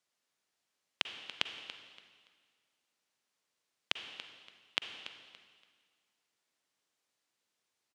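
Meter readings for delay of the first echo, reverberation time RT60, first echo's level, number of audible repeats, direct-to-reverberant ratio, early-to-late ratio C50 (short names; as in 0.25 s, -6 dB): 0.285 s, 1.8 s, -14.0 dB, 2, 6.5 dB, 7.0 dB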